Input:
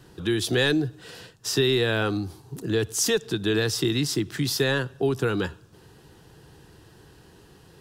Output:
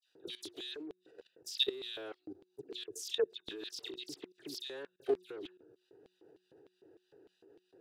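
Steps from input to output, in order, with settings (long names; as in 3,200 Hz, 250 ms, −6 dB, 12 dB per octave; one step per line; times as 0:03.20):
adaptive Wiener filter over 41 samples
low-shelf EQ 330 Hz +6.5 dB
all-pass dispersion lows, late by 74 ms, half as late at 2,200 Hz
downward compressor 2.5 to 1, threshold −42 dBFS, peak gain reduction 18 dB
high-pass filter 110 Hz 6 dB per octave
parametric band 200 Hz −14.5 dB 1.2 octaves
auto-filter high-pass square 3.3 Hz 360–3,500 Hz
hum removal 182.6 Hz, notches 2
output level in coarse steps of 17 dB
level +7 dB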